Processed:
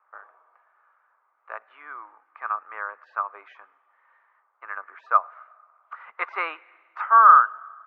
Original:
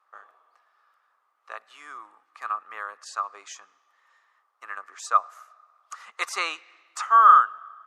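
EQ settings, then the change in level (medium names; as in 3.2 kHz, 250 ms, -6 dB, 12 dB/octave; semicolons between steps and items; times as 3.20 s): distance through air 57 m; cabinet simulation 380–2800 Hz, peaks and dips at 620 Hz +3 dB, 940 Hz +7 dB, 1.5 kHz +9 dB, 2.2 kHz +7 dB; tilt shelf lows +6.5 dB, about 900 Hz; -1.0 dB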